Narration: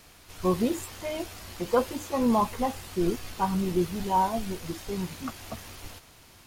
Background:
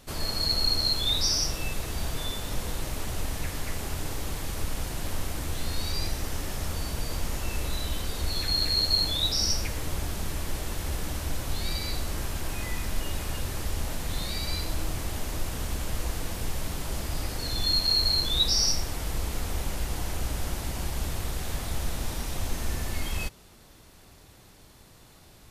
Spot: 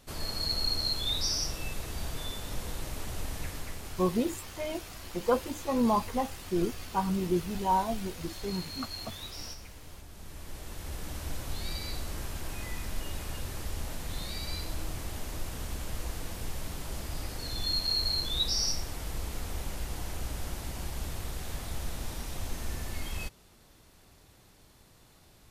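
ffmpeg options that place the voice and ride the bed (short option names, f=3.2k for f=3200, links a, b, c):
-filter_complex "[0:a]adelay=3550,volume=-2.5dB[a];[1:a]volume=7dB,afade=t=out:st=3.46:d=0.72:silence=0.237137,afade=t=in:st=10.08:d=1.21:silence=0.251189[b];[a][b]amix=inputs=2:normalize=0"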